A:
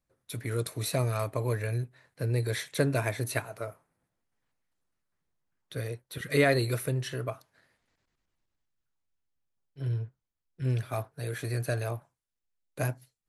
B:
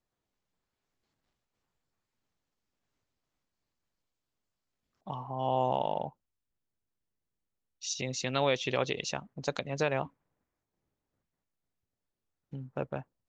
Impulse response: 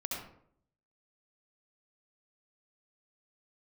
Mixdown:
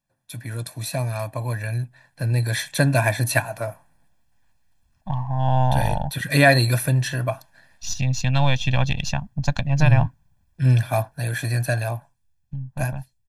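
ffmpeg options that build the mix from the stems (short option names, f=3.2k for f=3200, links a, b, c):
-filter_complex "[0:a]highpass=99,volume=0.5dB[a];[1:a]aeval=exprs='if(lt(val(0),0),0.708*val(0),val(0))':c=same,asubboost=boost=7.5:cutoff=130,volume=-3.5dB[b];[a][b]amix=inputs=2:normalize=0,aecho=1:1:1.2:0.8,dynaudnorm=f=390:g=13:m=11.5dB"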